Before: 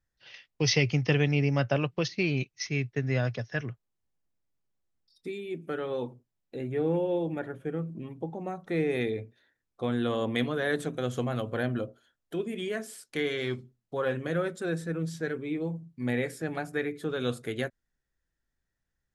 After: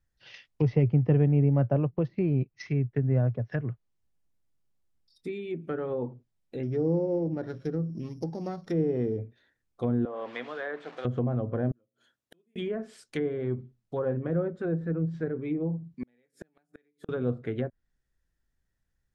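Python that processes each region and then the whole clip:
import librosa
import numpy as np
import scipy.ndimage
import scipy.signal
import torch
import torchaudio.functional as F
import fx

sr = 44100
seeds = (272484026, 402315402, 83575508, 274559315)

y = fx.chain(x, sr, fx.sample_sort(block=8),
    fx.peak_eq(hz=800.0, db=-3.5, octaves=0.38), at=(6.63, 9.19))
y = fx.chain(y, sr, fx.delta_mod(bps=64000, step_db=-35.5),
    fx.highpass(hz=650.0, slope=12),
    fx.spacing_loss(db_at_10k=20), at=(10.05, 11.05))
y = fx.chain(y, sr, fx.highpass(hz=130.0, slope=12),
    fx.notch(hz=750.0, q=21.0),
    fx.gate_flip(shuts_db=-37.0, range_db=-40), at=(11.71, 12.56))
y = fx.chain(y, sr, fx.highpass(hz=170.0, slope=24),
    fx.gate_flip(shuts_db=-27.0, range_db=-41), at=(15.94, 17.09))
y = fx.env_lowpass_down(y, sr, base_hz=780.0, full_db=-27.5)
y = fx.low_shelf(y, sr, hz=200.0, db=6.5)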